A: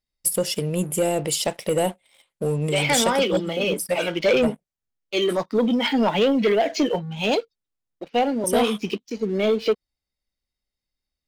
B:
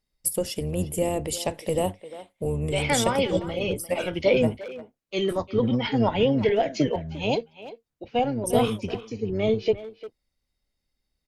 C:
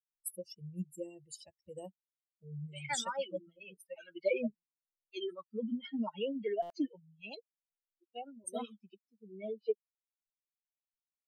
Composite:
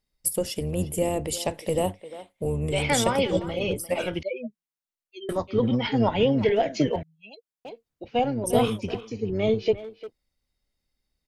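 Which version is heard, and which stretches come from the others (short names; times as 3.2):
B
4.23–5.29 from C
7.03–7.65 from C
not used: A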